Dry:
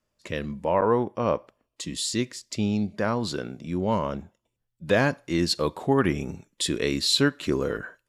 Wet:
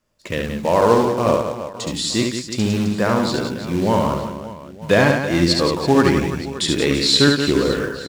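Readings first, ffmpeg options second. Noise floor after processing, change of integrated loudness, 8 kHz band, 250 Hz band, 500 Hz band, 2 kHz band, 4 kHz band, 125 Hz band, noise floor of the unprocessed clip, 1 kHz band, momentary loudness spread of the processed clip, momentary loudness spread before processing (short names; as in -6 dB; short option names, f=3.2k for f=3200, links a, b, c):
-37 dBFS, +8.0 dB, +6.0 dB, +8.0 dB, +8.0 dB, +8.0 dB, +8.0 dB, +8.0 dB, -80 dBFS, +8.0 dB, 12 LU, 11 LU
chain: -filter_complex "[0:a]acrusher=bits=4:mode=log:mix=0:aa=0.000001,acrossover=split=8300[a][b];[b]acompressor=threshold=-52dB:ratio=4:attack=1:release=60[c];[a][c]amix=inputs=2:normalize=0,aecho=1:1:70|175|332.5|568.8|923.1:0.631|0.398|0.251|0.158|0.1,volume=6dB"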